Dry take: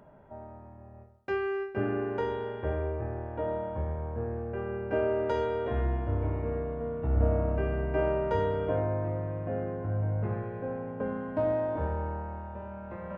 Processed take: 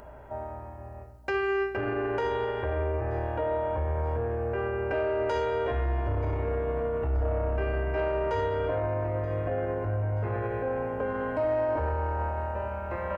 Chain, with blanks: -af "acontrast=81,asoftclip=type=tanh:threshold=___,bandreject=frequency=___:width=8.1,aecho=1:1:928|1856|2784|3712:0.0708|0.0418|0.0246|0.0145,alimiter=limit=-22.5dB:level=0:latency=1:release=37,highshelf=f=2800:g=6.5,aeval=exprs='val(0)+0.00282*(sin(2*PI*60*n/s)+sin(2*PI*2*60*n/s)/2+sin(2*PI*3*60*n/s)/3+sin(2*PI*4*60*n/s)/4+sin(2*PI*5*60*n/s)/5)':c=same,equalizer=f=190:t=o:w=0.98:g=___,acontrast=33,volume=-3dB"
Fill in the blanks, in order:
-11.5dB, 3500, -13.5